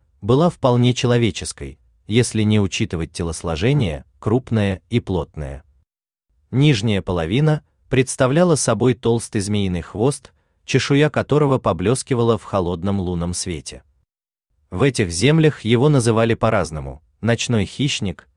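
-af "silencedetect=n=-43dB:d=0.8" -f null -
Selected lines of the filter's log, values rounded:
silence_start: 5.61
silence_end: 6.52 | silence_duration: 0.92
silence_start: 13.81
silence_end: 14.72 | silence_duration: 0.91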